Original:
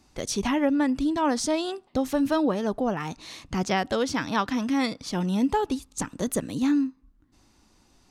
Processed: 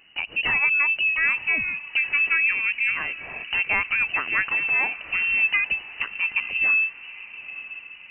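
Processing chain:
in parallel at −1 dB: downward compressor, threshold −33 dBFS, peak gain reduction 14 dB
on the sum: feedback delay with all-pass diffusion 934 ms, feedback 44%, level −15.5 dB
voice inversion scrambler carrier 2,900 Hz

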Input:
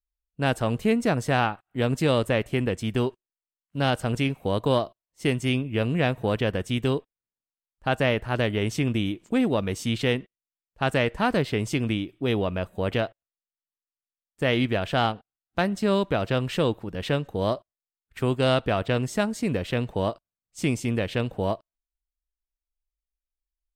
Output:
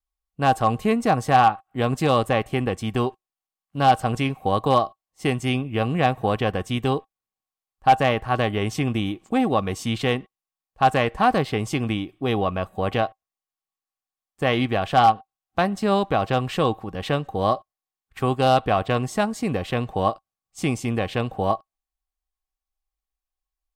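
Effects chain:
hollow resonant body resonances 780/1,100 Hz, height 16 dB, ringing for 70 ms
pitch vibrato 0.89 Hz 14 cents
gain into a clipping stage and back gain 9.5 dB
level +1 dB

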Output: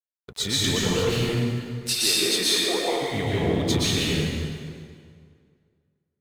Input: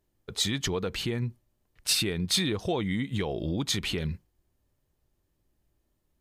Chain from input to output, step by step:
0:01.94–0:03.01: high-pass filter 230 Hz → 480 Hz 24 dB per octave
dead-zone distortion −46.5 dBFS
dense smooth reverb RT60 2.1 s, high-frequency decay 0.75×, pre-delay 105 ms, DRR −7.5 dB

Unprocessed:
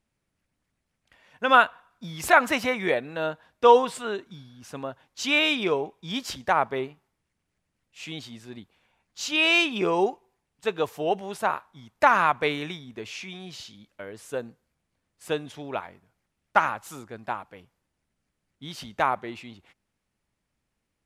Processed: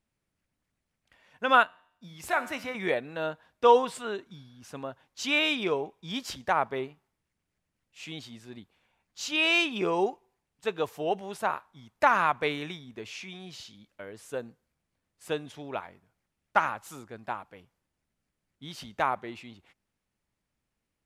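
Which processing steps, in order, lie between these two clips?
0:01.63–0:02.75: tuned comb filter 91 Hz, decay 0.74 s, harmonics all, mix 60%
level −3.5 dB

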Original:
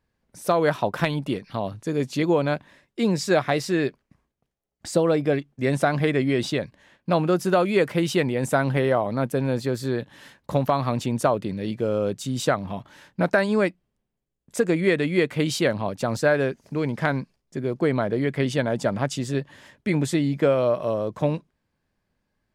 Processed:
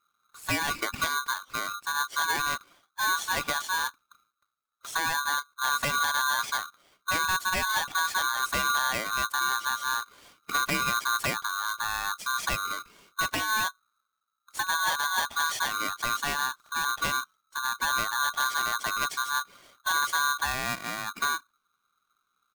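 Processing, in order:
spectral magnitudes quantised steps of 15 dB
parametric band 72 Hz +8.5 dB 1.1 octaves
comb filter 0.9 ms, depth 69%
hard clipping −14.5 dBFS, distortion −19 dB
ring modulator with a square carrier 1,300 Hz
level −6.5 dB

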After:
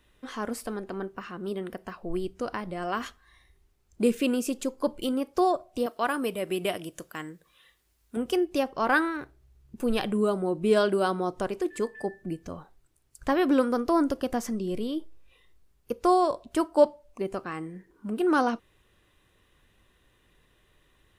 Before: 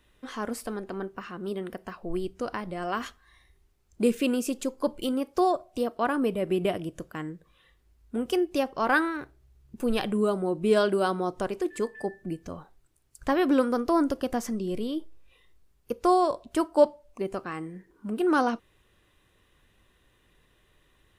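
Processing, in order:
0:05.86–0:08.17: spectral tilt +2.5 dB per octave

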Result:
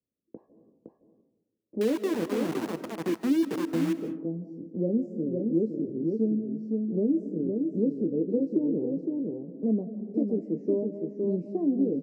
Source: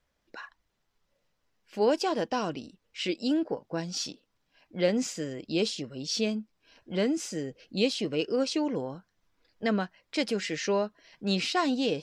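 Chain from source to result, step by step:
low-shelf EQ 290 Hz −7.5 dB
single-tap delay 513 ms −5 dB
noise gate with hold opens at −46 dBFS
inverse Chebyshev low-pass filter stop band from 1,300 Hz, stop band 60 dB
double-tracking delay 18 ms −7.5 dB
0:01.81–0:03.93: centre clipping without the shift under −39.5 dBFS
high-pass filter 140 Hz 12 dB per octave
convolution reverb RT60 0.95 s, pre-delay 115 ms, DRR 13 dB
multiband upward and downward compressor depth 40%
level +8 dB

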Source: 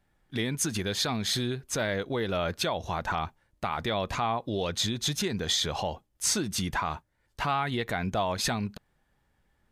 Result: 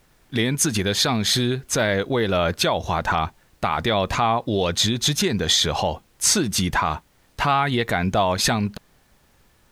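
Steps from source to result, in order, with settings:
background noise pink −69 dBFS
level +8.5 dB

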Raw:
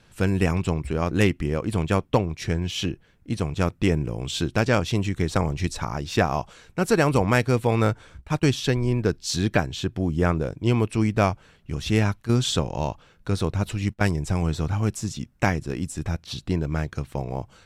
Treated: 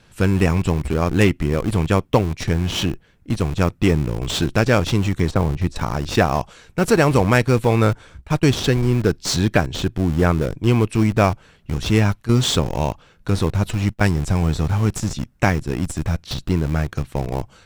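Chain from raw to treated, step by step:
0:05.31–0:05.76: low-pass filter 1,200 Hz 6 dB per octave
in parallel at −9 dB: comparator with hysteresis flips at −27 dBFS
on the sum: level +3.5 dB

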